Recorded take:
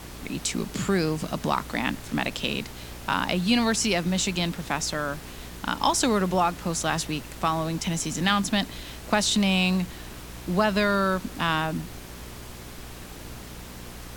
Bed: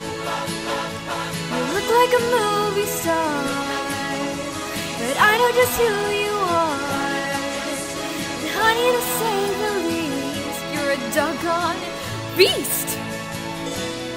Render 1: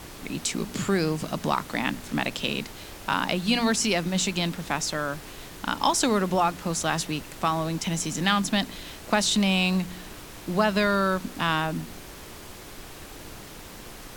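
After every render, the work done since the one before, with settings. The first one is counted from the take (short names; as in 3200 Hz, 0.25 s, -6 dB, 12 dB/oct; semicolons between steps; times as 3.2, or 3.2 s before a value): de-hum 60 Hz, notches 4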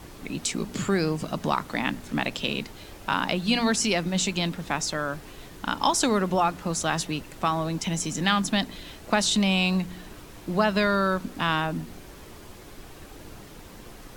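denoiser 6 dB, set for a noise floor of -43 dBFS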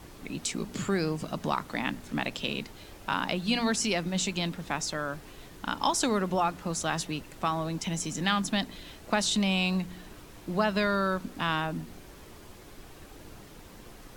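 gain -4 dB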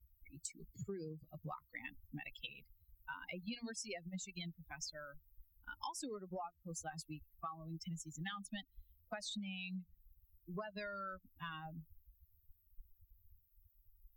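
per-bin expansion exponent 3; compressor 10:1, threshold -42 dBFS, peak gain reduction 16.5 dB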